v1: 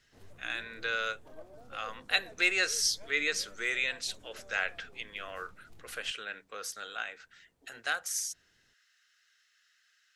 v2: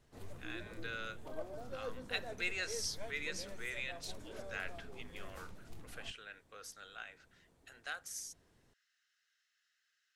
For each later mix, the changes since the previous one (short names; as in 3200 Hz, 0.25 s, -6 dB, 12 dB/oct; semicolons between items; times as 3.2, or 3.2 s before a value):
speech -11.0 dB; background +6.0 dB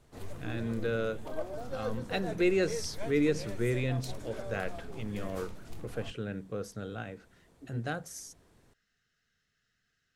speech: remove HPF 1500 Hz 12 dB/oct; background +7.0 dB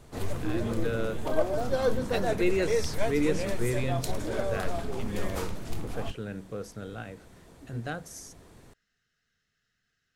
background +10.5 dB